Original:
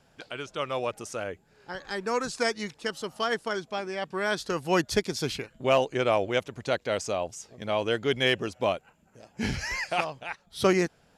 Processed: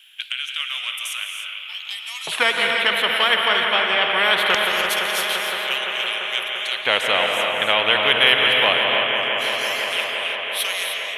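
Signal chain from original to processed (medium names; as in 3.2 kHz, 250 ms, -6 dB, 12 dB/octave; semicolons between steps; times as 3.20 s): FFT filter 150 Hz 0 dB, 330 Hz -14 dB, 3.2 kHz +15 dB, 4.8 kHz -27 dB, 6.9 kHz -27 dB, 11 kHz -5 dB; in parallel at -1 dB: compression, threshold -30 dBFS, peak gain reduction 18.5 dB; 1.25–2.32 s: on the sum: static phaser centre 310 Hz, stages 8; LFO high-pass square 0.22 Hz 520–6000 Hz; on a send: bucket-brigade echo 171 ms, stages 4096, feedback 81%, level -10 dB; on the sum: gated-style reverb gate 330 ms rising, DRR 5.5 dB; spectrum-flattening compressor 2:1; trim -1 dB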